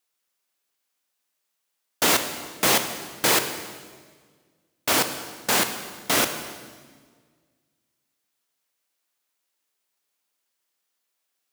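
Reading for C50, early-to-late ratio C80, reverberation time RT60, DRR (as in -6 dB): 9.0 dB, 10.5 dB, 1.6 s, 7.5 dB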